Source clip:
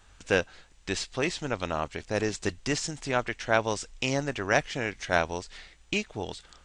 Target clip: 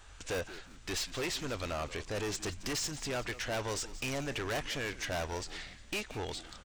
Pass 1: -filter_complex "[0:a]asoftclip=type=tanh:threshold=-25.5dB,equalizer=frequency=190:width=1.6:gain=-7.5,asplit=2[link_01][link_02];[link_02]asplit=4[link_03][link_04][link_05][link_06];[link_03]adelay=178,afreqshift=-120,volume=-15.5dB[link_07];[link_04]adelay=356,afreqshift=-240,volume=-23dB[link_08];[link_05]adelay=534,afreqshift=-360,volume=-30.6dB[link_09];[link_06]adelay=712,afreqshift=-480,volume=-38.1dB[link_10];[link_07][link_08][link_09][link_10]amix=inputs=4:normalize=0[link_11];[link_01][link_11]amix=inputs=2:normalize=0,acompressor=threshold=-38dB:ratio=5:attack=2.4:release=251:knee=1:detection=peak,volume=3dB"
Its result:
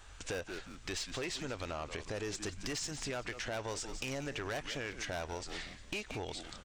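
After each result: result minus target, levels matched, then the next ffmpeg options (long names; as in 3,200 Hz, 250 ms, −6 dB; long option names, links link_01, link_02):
downward compressor: peak gain reduction +11 dB; soft clipping: distortion −5 dB
-filter_complex "[0:a]asoftclip=type=tanh:threshold=-25.5dB,equalizer=frequency=190:width=1.6:gain=-7.5,asplit=2[link_01][link_02];[link_02]asplit=4[link_03][link_04][link_05][link_06];[link_03]adelay=178,afreqshift=-120,volume=-15.5dB[link_07];[link_04]adelay=356,afreqshift=-240,volume=-23dB[link_08];[link_05]adelay=534,afreqshift=-360,volume=-30.6dB[link_09];[link_06]adelay=712,afreqshift=-480,volume=-38.1dB[link_10];[link_07][link_08][link_09][link_10]amix=inputs=4:normalize=0[link_11];[link_01][link_11]amix=inputs=2:normalize=0,volume=3dB"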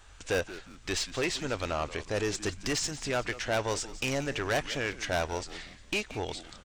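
soft clipping: distortion −5 dB
-filter_complex "[0:a]asoftclip=type=tanh:threshold=-34dB,equalizer=frequency=190:width=1.6:gain=-7.5,asplit=2[link_01][link_02];[link_02]asplit=4[link_03][link_04][link_05][link_06];[link_03]adelay=178,afreqshift=-120,volume=-15.5dB[link_07];[link_04]adelay=356,afreqshift=-240,volume=-23dB[link_08];[link_05]adelay=534,afreqshift=-360,volume=-30.6dB[link_09];[link_06]adelay=712,afreqshift=-480,volume=-38.1dB[link_10];[link_07][link_08][link_09][link_10]amix=inputs=4:normalize=0[link_11];[link_01][link_11]amix=inputs=2:normalize=0,volume=3dB"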